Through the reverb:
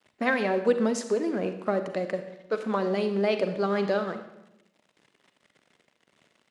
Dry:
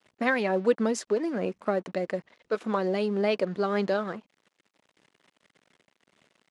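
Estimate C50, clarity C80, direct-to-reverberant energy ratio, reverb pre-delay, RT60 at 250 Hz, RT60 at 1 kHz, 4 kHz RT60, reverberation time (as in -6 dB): 9.5 dB, 11.5 dB, 8.5 dB, 36 ms, 1.1 s, 0.80 s, 0.75 s, 0.90 s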